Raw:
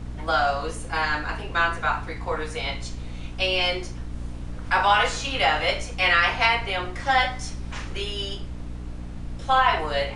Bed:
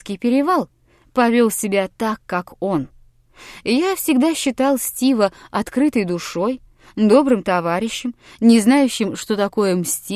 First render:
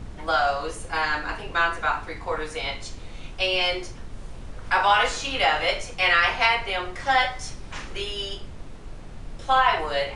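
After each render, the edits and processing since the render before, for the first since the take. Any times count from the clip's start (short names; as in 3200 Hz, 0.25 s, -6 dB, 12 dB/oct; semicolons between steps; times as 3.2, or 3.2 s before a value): de-hum 60 Hz, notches 5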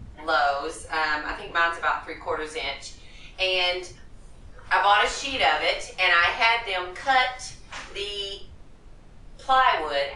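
noise print and reduce 9 dB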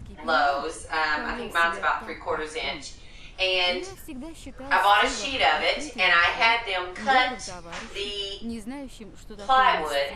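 add bed -23 dB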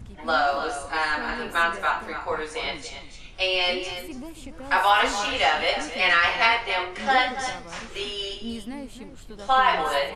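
echo 0.283 s -10.5 dB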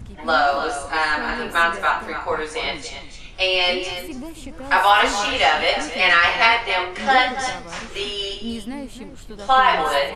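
gain +4.5 dB; limiter -3 dBFS, peak gain reduction 1 dB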